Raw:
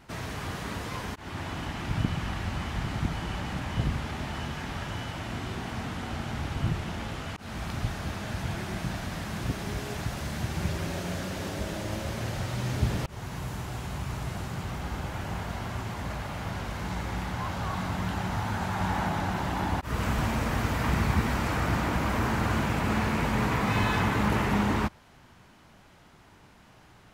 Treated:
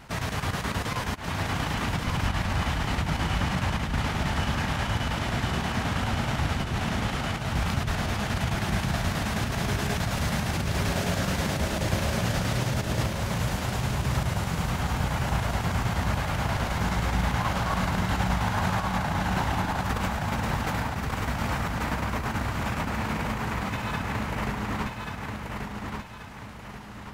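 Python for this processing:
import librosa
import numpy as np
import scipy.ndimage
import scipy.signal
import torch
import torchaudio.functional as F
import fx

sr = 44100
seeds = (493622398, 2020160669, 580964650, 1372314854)

p1 = fx.peak_eq(x, sr, hz=340.0, db=-5.0, octaves=0.75)
p2 = fx.over_compress(p1, sr, threshold_db=-32.0, ratio=-1.0)
p3 = fx.chopper(p2, sr, hz=9.4, depth_pct=60, duty_pct=75)
p4 = p3 + fx.echo_feedback(p3, sr, ms=1134, feedback_pct=41, wet_db=-4.0, dry=0)
y = p4 * 10.0 ** (5.0 / 20.0)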